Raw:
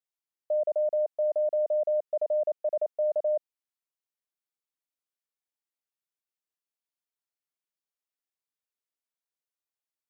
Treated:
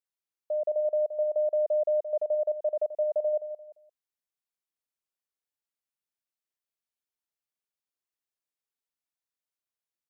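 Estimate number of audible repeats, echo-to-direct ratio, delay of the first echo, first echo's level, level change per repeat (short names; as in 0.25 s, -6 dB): 3, -9.5 dB, 0.173 s, -10.0 dB, -10.5 dB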